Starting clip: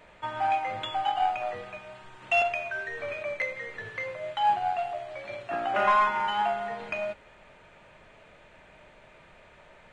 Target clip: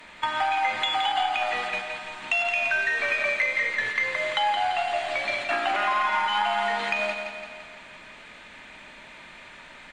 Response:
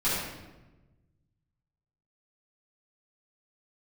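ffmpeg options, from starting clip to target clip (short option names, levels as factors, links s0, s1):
-filter_complex "[0:a]aemphasis=mode=production:type=cd,agate=range=0.447:threshold=0.00891:ratio=16:detection=peak,equalizer=f=125:t=o:w=1:g=-4,equalizer=f=250:t=o:w=1:g=11,equalizer=f=500:t=o:w=1:g=-4,equalizer=f=1000:t=o:w=1:g=6,equalizer=f=2000:t=o:w=1:g=8,equalizer=f=4000:t=o:w=1:g=9,equalizer=f=8000:t=o:w=1:g=4,acrossover=split=350[s0][s1];[s0]acompressor=threshold=0.002:ratio=6[s2];[s2][s1]amix=inputs=2:normalize=0,alimiter=limit=0.168:level=0:latency=1:release=124,acrossover=split=170[s3][s4];[s4]acompressor=threshold=0.0224:ratio=2.5[s5];[s3][s5]amix=inputs=2:normalize=0,aeval=exprs='0.126*(cos(1*acos(clip(val(0)/0.126,-1,1)))-cos(1*PI/2))+0.001*(cos(6*acos(clip(val(0)/0.126,-1,1)))-cos(6*PI/2))':c=same,aecho=1:1:170|340|510|680|850|1020|1190:0.473|0.26|0.143|0.0787|0.0433|0.0238|0.0131,volume=2.11"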